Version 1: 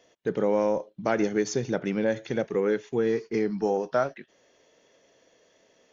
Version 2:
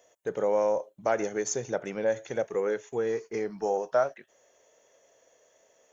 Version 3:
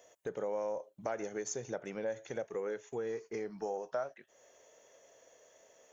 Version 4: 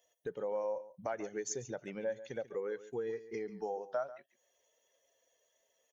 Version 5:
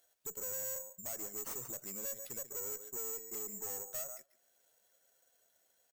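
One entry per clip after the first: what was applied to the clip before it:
FFT filter 110 Hz 0 dB, 160 Hz -5 dB, 290 Hz -4 dB, 580 Hz +8 dB, 4.8 kHz -1 dB, 7.1 kHz +15 dB; trim -6.5 dB
compression 2:1, threshold -44 dBFS, peak gain reduction 13.5 dB; trim +1 dB
expander on every frequency bin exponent 1.5; delay 141 ms -15.5 dB; trim +1.5 dB
careless resampling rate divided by 6×, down none, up zero stuff; valve stage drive 29 dB, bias 0.35; speakerphone echo 200 ms, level -27 dB; trim -3.5 dB

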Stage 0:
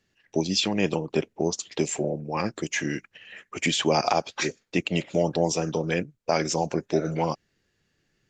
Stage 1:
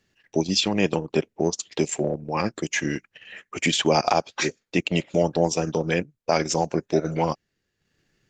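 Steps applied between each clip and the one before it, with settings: transient shaper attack -1 dB, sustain -8 dB; trim +3 dB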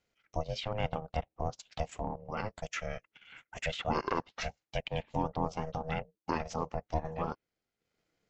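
low-pass that closes with the level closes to 2.9 kHz, closed at -19.5 dBFS; ring modulator 320 Hz; trim -8.5 dB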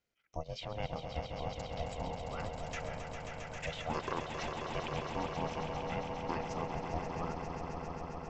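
echo with a slow build-up 134 ms, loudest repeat 5, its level -8 dB; trim -6 dB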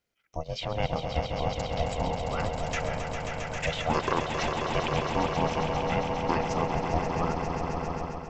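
level rider gain up to 6.5 dB; trim +3.5 dB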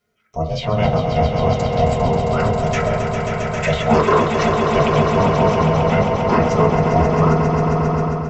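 reverberation RT60 0.35 s, pre-delay 4 ms, DRR -5.5 dB; trim +4.5 dB

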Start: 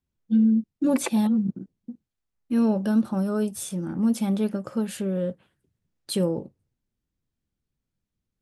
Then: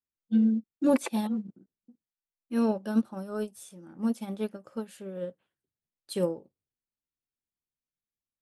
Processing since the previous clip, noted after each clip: tone controls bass -9 dB, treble 0 dB; upward expansion 2.5:1, over -33 dBFS; trim +3 dB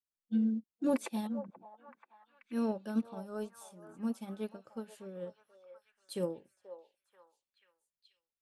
repeats whose band climbs or falls 484 ms, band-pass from 770 Hz, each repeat 0.7 oct, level -8 dB; trim -7 dB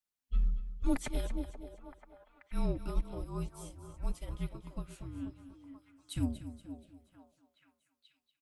frequency shift -260 Hz; feedback delay 238 ms, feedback 40%, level -12.5 dB; trim +2 dB

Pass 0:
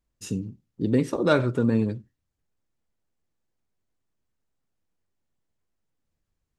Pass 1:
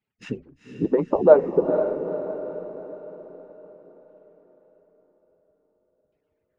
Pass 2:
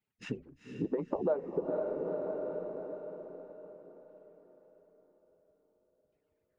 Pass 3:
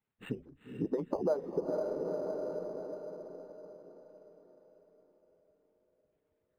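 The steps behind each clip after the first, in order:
harmonic-percussive separation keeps percussive; LFO low-pass saw down 0.49 Hz 310–2800 Hz; echo that smears into a reverb 468 ms, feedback 50%, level -8 dB; trim +4.5 dB
compression 3:1, threshold -28 dBFS, peak gain reduction 15.5 dB; trim -4 dB
decimation joined by straight lines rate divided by 8×

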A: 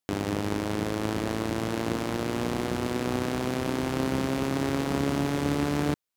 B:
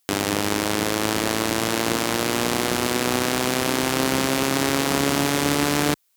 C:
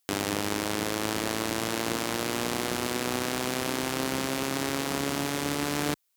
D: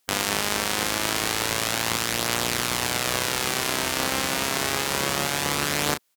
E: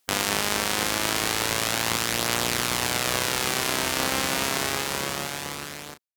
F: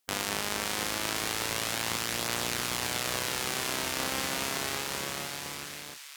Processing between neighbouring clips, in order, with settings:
tilt EQ +2.5 dB/octave; in parallel at -2 dB: peak limiter -19.5 dBFS, peak gain reduction 10 dB; on the sum: trim +6 dB
gain riding; trim -7.5 dB
spectral peaks clipped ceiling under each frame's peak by 15 dB; doubling 34 ms -7 dB; trim +3.5 dB
fade out at the end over 1.71 s
feedback echo behind a high-pass 529 ms, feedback 53%, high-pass 1.9 kHz, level -7 dB; trim -7 dB

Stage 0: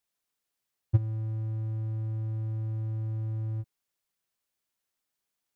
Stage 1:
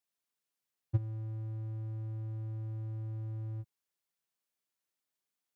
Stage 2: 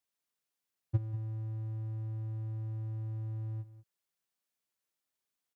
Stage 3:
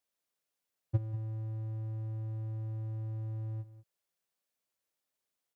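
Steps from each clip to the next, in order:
high-pass 94 Hz; trim -5 dB
delay 192 ms -14.5 dB
peaking EQ 560 Hz +5 dB 0.73 oct

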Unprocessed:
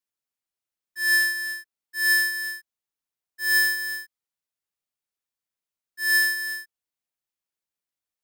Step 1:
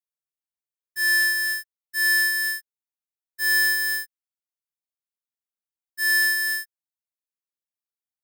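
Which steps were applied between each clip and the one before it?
treble shelf 7.8 kHz +7 dB; waveshaping leveller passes 3; trim -6.5 dB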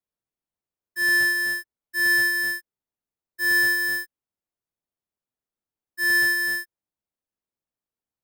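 tilt shelf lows +8 dB, about 1.2 kHz; trim +3.5 dB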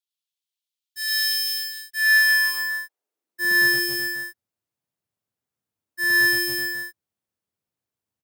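high-pass sweep 3.4 kHz -> 99 Hz, 1.82–3.81 s; loudspeakers at several distances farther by 36 m 0 dB, 93 m -5 dB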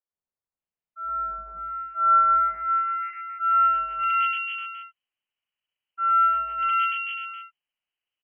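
frequency inversion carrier 3.1 kHz; tilt shelf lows -4 dB, about 690 Hz; three bands offset in time mids, lows, highs 70/590 ms, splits 300/1700 Hz

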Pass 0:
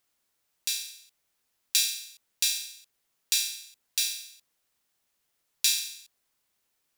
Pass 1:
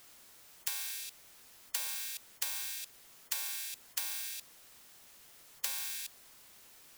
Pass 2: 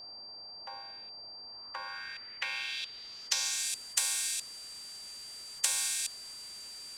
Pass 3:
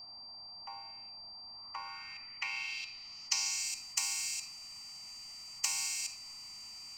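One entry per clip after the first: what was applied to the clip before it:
spectrum-flattening compressor 10:1; trim -4.5 dB
low-pass sweep 800 Hz -> 8.5 kHz, 1.41–3.72 s; whistle 4.7 kHz -50 dBFS; trim +5.5 dB
static phaser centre 2.4 kHz, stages 8; on a send at -9 dB: reverberation RT60 0.80 s, pre-delay 31 ms

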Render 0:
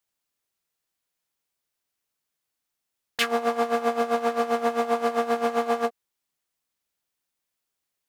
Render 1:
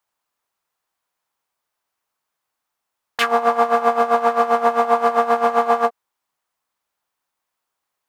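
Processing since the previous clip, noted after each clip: peaking EQ 990 Hz +12.5 dB 1.6 oct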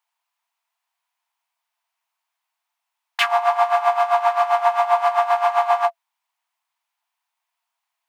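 rippled Chebyshev high-pass 660 Hz, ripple 6 dB; trim +3 dB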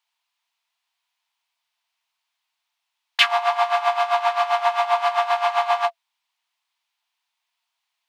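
peaking EQ 3.7 kHz +11 dB 1.8 oct; trim -4 dB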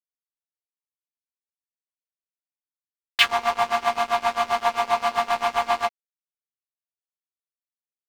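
crossover distortion -28.5 dBFS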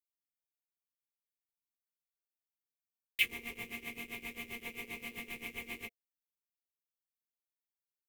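FFT filter 460 Hz 0 dB, 690 Hz -28 dB, 1.5 kHz -27 dB, 2.2 kHz +1 dB, 4.5 kHz -17 dB, 8.8 kHz -3 dB, 13 kHz +8 dB; trim -7.5 dB

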